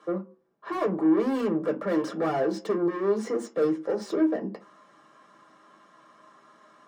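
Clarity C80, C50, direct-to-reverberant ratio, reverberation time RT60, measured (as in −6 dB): 21.5 dB, 16.0 dB, 2.5 dB, 0.40 s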